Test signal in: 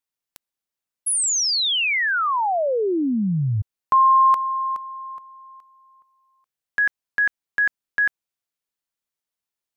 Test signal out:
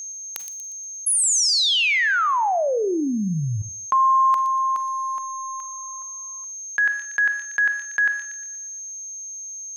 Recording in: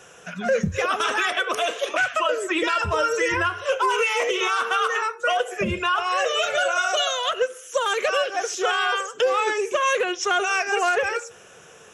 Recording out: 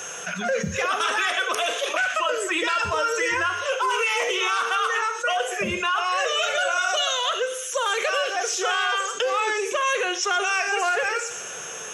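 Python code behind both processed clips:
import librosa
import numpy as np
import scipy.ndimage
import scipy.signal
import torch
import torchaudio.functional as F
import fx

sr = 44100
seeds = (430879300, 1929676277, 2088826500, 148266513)

p1 = scipy.signal.sosfilt(scipy.signal.butter(2, 88.0, 'highpass', fs=sr, output='sos'), x)
p2 = fx.low_shelf(p1, sr, hz=480.0, db=-8.5)
p3 = p2 + 10.0 ** (-47.0 / 20.0) * np.sin(2.0 * np.pi * 6400.0 * np.arange(len(p2)) / sr)
p4 = p3 + fx.echo_wet_highpass(p3, sr, ms=119, feedback_pct=40, hz=4200.0, wet_db=-10, dry=0)
p5 = fx.rev_schroeder(p4, sr, rt60_s=0.38, comb_ms=33, drr_db=14.5)
p6 = fx.env_flatten(p5, sr, amount_pct=50)
y = p6 * 10.0 ** (-1.5 / 20.0)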